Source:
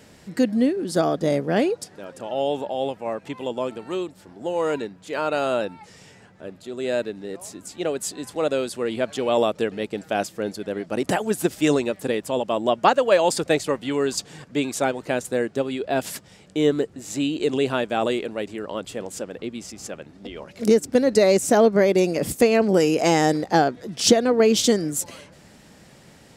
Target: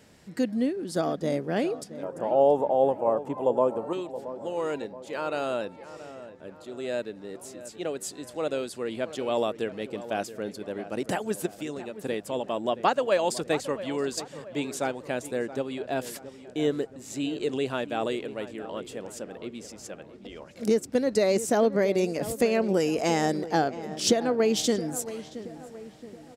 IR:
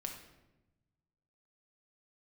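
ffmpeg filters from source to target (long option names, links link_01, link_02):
-filter_complex "[0:a]asettb=1/sr,asplit=3[link_01][link_02][link_03];[link_01]atrim=end=2.034[link_04];[link_02]atrim=start=2.03:end=3.93,asetpts=PTS-STARTPTS,afade=type=in:duration=0.004:curve=qsin,afade=type=out:start_time=1.896:duration=0.004:curve=qsin,equalizer=frequency=125:width_type=o:width=1:gain=5,equalizer=frequency=250:width_type=o:width=1:gain=3,equalizer=frequency=500:width_type=o:width=1:gain=9,equalizer=frequency=1000:width_type=o:width=1:gain=11,equalizer=frequency=2000:width_type=o:width=1:gain=-8,equalizer=frequency=4000:width_type=o:width=1:gain=-10[link_05];[link_03]atrim=start=3.926[link_06];[link_04][link_05]acrossfade=duration=0.004:curve1=hsin:curve2=qsin[link_07];[link_07][link_06]acrossfade=duration=0.004:curve1=qsin:curve2=hsin,asplit=3[link_08][link_09][link_10];[link_08]afade=type=out:start_time=11.45:duration=0.02[link_11];[link_09]acompressor=threshold=-26dB:ratio=6,afade=type=in:start_time=11.45:duration=0.02,afade=type=out:start_time=12.02:duration=0.02[link_12];[link_10]afade=type=in:start_time=12.02:duration=0.02[link_13];[link_11][link_12][link_13]amix=inputs=3:normalize=0,asplit=2[link_14][link_15];[link_15]adelay=674,lowpass=frequency=1900:poles=1,volume=-13.5dB,asplit=2[link_16][link_17];[link_17]adelay=674,lowpass=frequency=1900:poles=1,volume=0.51,asplit=2[link_18][link_19];[link_19]adelay=674,lowpass=frequency=1900:poles=1,volume=0.51,asplit=2[link_20][link_21];[link_21]adelay=674,lowpass=frequency=1900:poles=1,volume=0.51,asplit=2[link_22][link_23];[link_23]adelay=674,lowpass=frequency=1900:poles=1,volume=0.51[link_24];[link_16][link_18][link_20][link_22][link_24]amix=inputs=5:normalize=0[link_25];[link_14][link_25]amix=inputs=2:normalize=0,volume=-6.5dB"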